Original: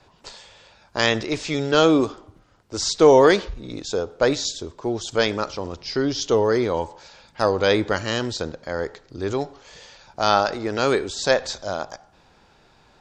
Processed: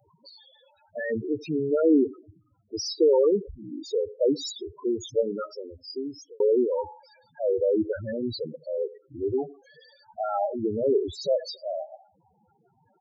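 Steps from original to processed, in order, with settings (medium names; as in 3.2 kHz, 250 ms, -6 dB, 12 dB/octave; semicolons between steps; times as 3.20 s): 10.20–11.28 s: bass shelf 160 Hz +9.5 dB; delay 81 ms -20 dB; peak limiter -9.5 dBFS, peak gain reduction 7 dB; high-pass 85 Hz 12 dB/octave; loudest bins only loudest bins 4; treble shelf 6 kHz +11 dB; 5.27–6.40 s: fade out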